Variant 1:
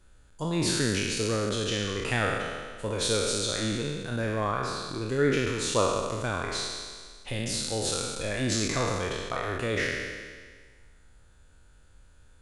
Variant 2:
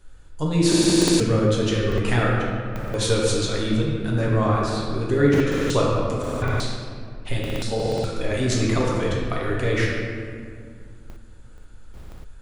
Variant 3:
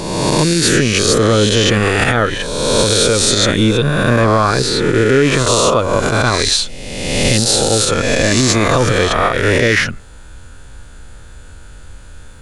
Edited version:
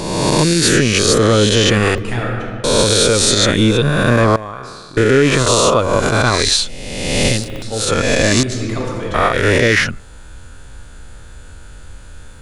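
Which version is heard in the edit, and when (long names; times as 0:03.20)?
3
0:01.95–0:02.64: punch in from 2
0:04.36–0:04.97: punch in from 1
0:07.37–0:07.81: punch in from 2, crossfade 0.24 s
0:08.43–0:09.14: punch in from 2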